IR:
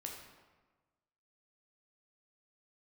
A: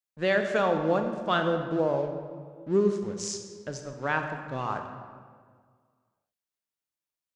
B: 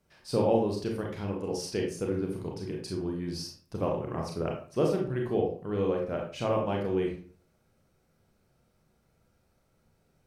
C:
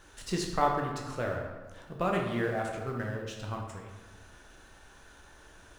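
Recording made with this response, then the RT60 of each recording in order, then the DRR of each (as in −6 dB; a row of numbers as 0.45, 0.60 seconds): C; 1.8, 0.45, 1.3 seconds; 5.5, −0.5, 0.0 decibels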